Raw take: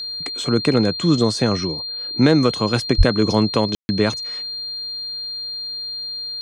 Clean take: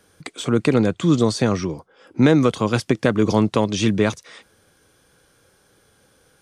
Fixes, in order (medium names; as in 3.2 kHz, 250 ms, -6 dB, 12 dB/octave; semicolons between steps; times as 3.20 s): band-stop 4.2 kHz, Q 30; de-plosive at 2.97 s; room tone fill 3.75–3.89 s